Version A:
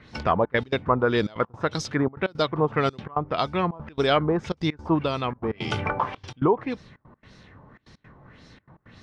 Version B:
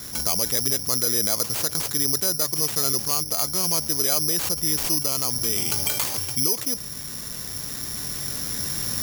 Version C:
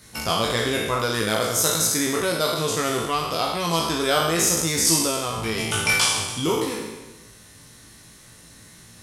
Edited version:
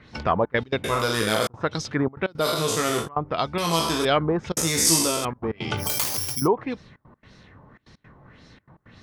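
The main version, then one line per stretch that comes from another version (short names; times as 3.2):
A
0.84–1.47 from C
2.43–3.04 from C, crossfade 0.10 s
3.58–4.05 from C
4.57–5.25 from C
5.85–6.4 from B, crossfade 0.16 s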